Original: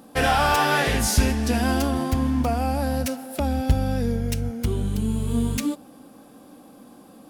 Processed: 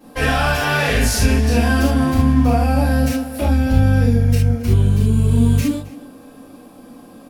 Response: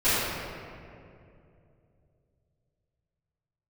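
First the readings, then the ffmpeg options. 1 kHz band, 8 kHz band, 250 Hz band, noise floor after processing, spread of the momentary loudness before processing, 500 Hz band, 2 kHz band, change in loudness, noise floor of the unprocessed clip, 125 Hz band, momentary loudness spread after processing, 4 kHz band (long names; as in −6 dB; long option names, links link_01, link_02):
+1.0 dB, +2.5 dB, +6.5 dB, −42 dBFS, 8 LU, +4.5 dB, +5.5 dB, +7.0 dB, −49 dBFS, +10.5 dB, 5 LU, +3.0 dB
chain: -filter_complex "[0:a]alimiter=limit=-14.5dB:level=0:latency=1:release=25,asplit=2[link_01][link_02];[link_02]adelay=268.2,volume=-18dB,highshelf=frequency=4000:gain=-6.04[link_03];[link_01][link_03]amix=inputs=2:normalize=0[link_04];[1:a]atrim=start_sample=2205,atrim=end_sample=3969[link_05];[link_04][link_05]afir=irnorm=-1:irlink=0,volume=-7dB"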